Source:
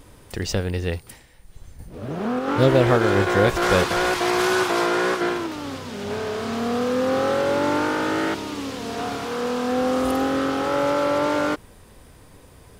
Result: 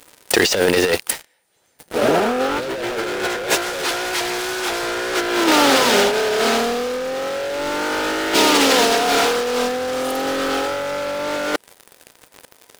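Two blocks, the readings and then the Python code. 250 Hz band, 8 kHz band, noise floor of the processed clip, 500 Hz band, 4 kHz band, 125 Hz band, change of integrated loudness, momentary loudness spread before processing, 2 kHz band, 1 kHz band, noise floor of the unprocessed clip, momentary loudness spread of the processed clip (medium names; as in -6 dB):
+0.5 dB, +11.5 dB, -58 dBFS, +2.5 dB, +10.5 dB, -10.0 dB, +3.5 dB, 12 LU, +5.5 dB, +3.5 dB, -49 dBFS, 10 LU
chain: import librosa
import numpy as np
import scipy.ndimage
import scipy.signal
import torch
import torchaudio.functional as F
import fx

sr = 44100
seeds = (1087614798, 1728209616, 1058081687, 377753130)

y = scipy.signal.sosfilt(scipy.signal.butter(2, 460.0, 'highpass', fs=sr, output='sos'), x)
y = fx.notch(y, sr, hz=1100.0, q=8.0)
y = fx.dynamic_eq(y, sr, hz=1000.0, q=0.76, threshold_db=-34.0, ratio=4.0, max_db=-5)
y = fx.leveller(y, sr, passes=5)
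y = fx.over_compress(y, sr, threshold_db=-18.0, ratio=-0.5)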